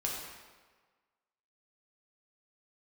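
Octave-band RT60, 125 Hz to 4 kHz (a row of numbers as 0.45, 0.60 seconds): 1.2, 1.3, 1.4, 1.5, 1.3, 1.1 seconds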